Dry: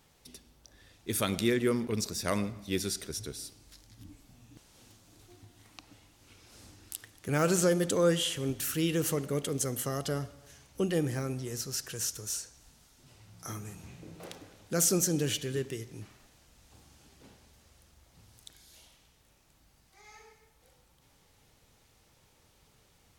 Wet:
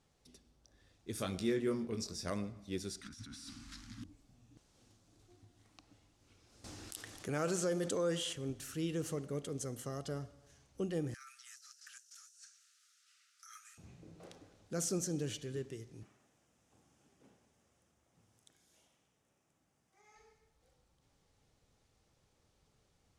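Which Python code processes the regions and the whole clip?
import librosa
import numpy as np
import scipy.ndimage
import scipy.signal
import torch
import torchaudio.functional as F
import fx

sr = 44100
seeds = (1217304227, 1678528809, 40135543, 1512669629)

y = fx.chain(x, sr, fx.dynamic_eq(hz=5100.0, q=5.4, threshold_db=-51.0, ratio=4.0, max_db=5),
    fx.doubler(ms=22.0, db=-6.0), at=(1.15, 2.3))
y = fx.chain(y, sr, fx.law_mismatch(coded='mu'),
    fx.curve_eq(hz=(140.0, 260.0, 430.0, 1300.0, 13000.0), db=(0, 13, -22, 12, -1)),
    fx.over_compress(threshold_db=-40.0, ratio=-1.0), at=(3.01, 4.04))
y = fx.chain(y, sr, fx.low_shelf(hz=220.0, db=-8.5),
    fx.env_flatten(amount_pct=50), at=(6.64, 8.33))
y = fx.chain(y, sr, fx.cheby1_highpass(hz=1200.0, order=10),
    fx.over_compress(threshold_db=-47.0, ratio=-1.0), at=(11.14, 13.78))
y = fx.chain(y, sr, fx.highpass(hz=140.0, slope=12),
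    fx.peak_eq(hz=4300.0, db=-9.5, octaves=0.47), at=(16.03, 20.16))
y = scipy.signal.sosfilt(scipy.signal.butter(2, 7800.0, 'lowpass', fs=sr, output='sos'), y)
y = fx.peak_eq(y, sr, hz=2600.0, db=-5.0, octaves=2.1)
y = fx.notch(y, sr, hz=920.0, q=17.0)
y = y * 10.0 ** (-7.5 / 20.0)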